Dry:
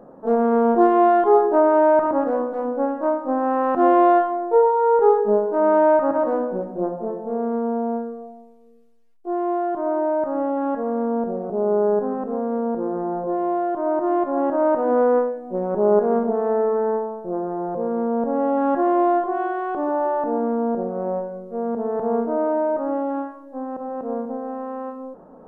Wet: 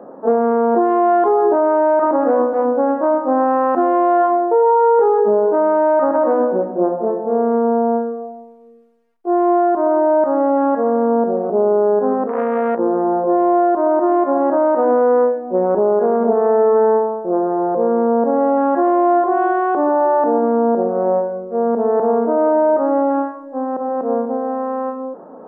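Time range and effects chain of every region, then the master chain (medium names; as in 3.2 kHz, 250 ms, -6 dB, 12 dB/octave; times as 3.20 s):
12.27–12.79 s: comb 1.7 ms, depth 32% + transformer saturation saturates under 730 Hz
whole clip: three-band isolator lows -23 dB, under 200 Hz, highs -12 dB, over 2.2 kHz; loudness maximiser +14.5 dB; trim -5.5 dB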